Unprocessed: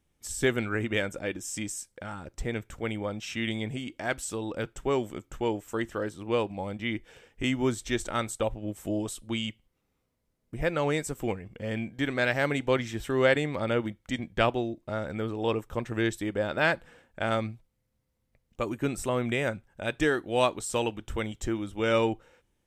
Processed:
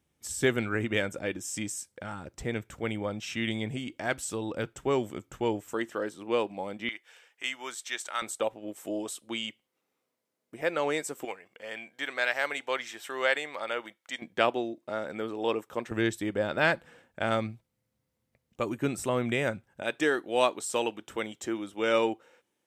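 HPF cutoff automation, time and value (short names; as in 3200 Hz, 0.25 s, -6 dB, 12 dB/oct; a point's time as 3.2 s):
78 Hz
from 5.74 s 240 Hz
from 6.89 s 1000 Hz
from 8.22 s 330 Hz
from 11.25 s 710 Hz
from 14.22 s 270 Hz
from 15.91 s 100 Hz
from 19.82 s 270 Hz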